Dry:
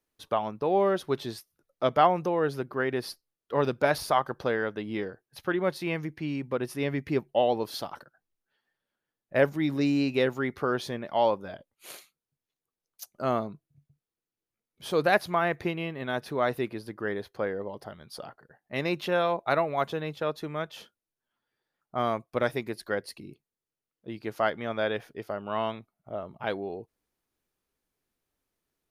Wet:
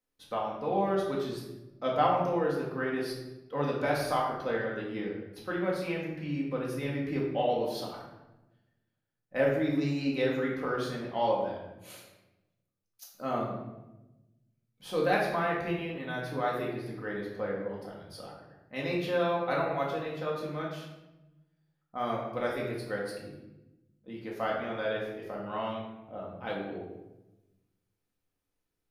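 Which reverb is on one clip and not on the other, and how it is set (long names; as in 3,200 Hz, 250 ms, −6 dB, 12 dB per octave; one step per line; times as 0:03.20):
rectangular room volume 420 cubic metres, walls mixed, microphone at 2 metres
level −8.5 dB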